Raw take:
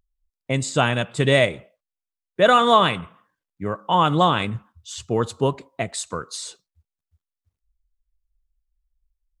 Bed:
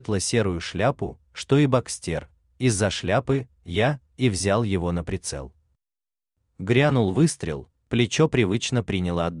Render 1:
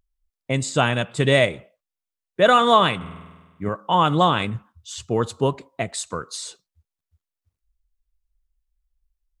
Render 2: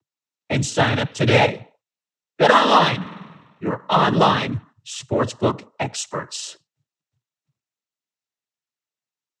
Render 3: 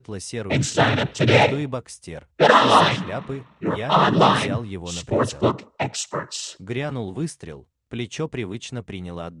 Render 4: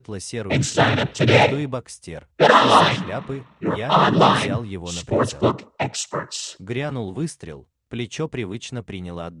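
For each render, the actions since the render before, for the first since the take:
2.96–3.69 s: flutter echo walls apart 8.5 m, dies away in 1.3 s
noise-vocoded speech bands 12; in parallel at -7 dB: saturation -18.5 dBFS, distortion -8 dB
add bed -8 dB
trim +1 dB; peak limiter -1 dBFS, peak gain reduction 0.5 dB

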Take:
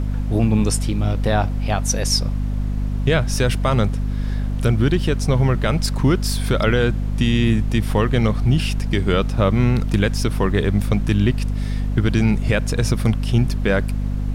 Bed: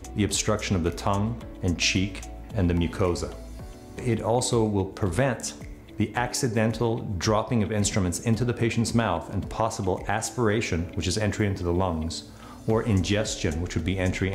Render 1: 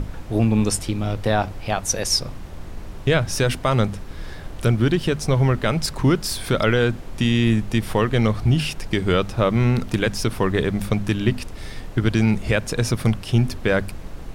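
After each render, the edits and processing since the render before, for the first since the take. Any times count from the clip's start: hum notches 50/100/150/200/250 Hz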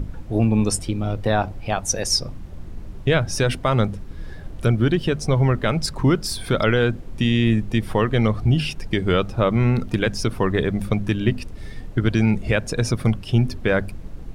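noise reduction 9 dB, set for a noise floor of -35 dBFS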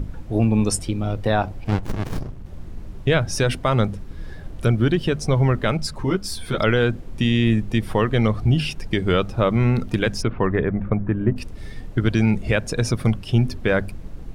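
1.64–2.46 s: sliding maximum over 65 samples; 5.77–6.58 s: three-phase chorus; 10.21–11.35 s: low-pass 2.9 kHz -> 1.4 kHz 24 dB/octave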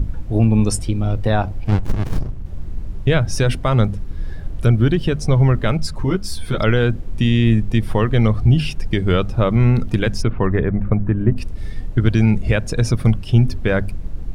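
bass shelf 130 Hz +9.5 dB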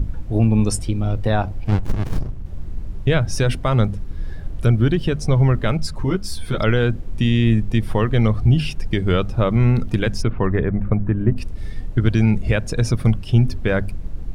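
trim -1.5 dB

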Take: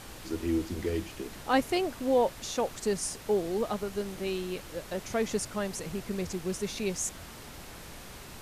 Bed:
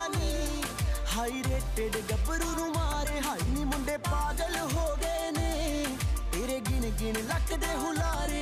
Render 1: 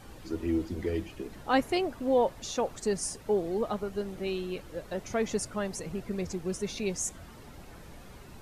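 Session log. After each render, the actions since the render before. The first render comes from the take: noise reduction 10 dB, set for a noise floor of -46 dBFS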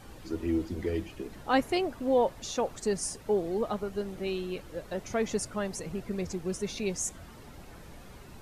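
no audible change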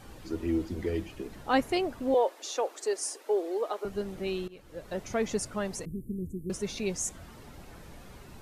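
2.14–3.85 s: steep high-pass 310 Hz 48 dB/octave; 4.48–4.95 s: fade in linear, from -20 dB; 5.85–6.50 s: inverse Chebyshev band-stop 780–5100 Hz, stop band 50 dB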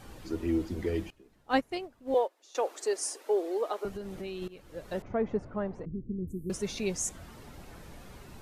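1.10–2.55 s: upward expansion 2.5:1, over -34 dBFS; 3.90–4.42 s: compression, threshold -35 dBFS; 5.02–6.28 s: low-pass 1.2 kHz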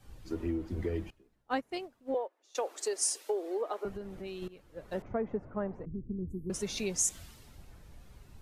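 compression 16:1, threshold -30 dBFS, peak gain reduction 10 dB; three bands expanded up and down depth 70%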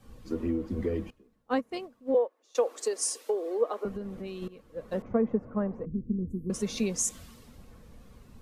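small resonant body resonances 230/480/1100 Hz, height 11 dB, ringing for 45 ms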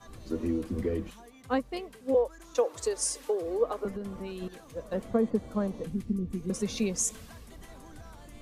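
add bed -20.5 dB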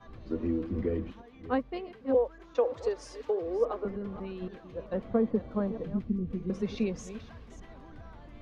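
chunks repeated in reverse 304 ms, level -13 dB; distance through air 270 m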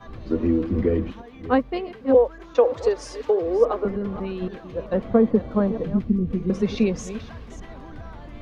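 trim +9.5 dB

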